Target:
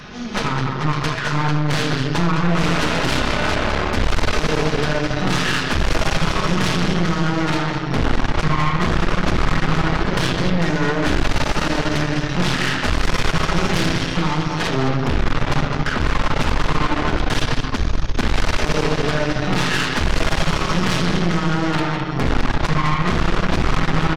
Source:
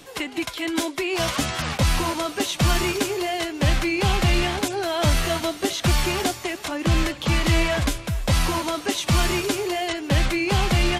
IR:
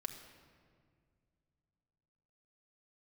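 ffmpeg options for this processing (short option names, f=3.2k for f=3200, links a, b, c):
-filter_complex "[0:a]asplit=2[a][b];[b]acompressor=threshold=-26dB:ratio=6,volume=-0.5dB[c];[a][c]amix=inputs=2:normalize=0,asetrate=20066,aresample=44100,aecho=1:1:50|81|208:0.15|0.251|0.422,asoftclip=type=tanh:threshold=-18.5dB[d];[1:a]atrim=start_sample=2205[e];[d][e]afir=irnorm=-1:irlink=0,aeval=exprs='0.251*(cos(1*acos(clip(val(0)/0.251,-1,1)))-cos(1*PI/2))+0.0562*(cos(5*acos(clip(val(0)/0.251,-1,1)))-cos(5*PI/2))+0.0891*(cos(6*acos(clip(val(0)/0.251,-1,1)))-cos(6*PI/2))':c=same"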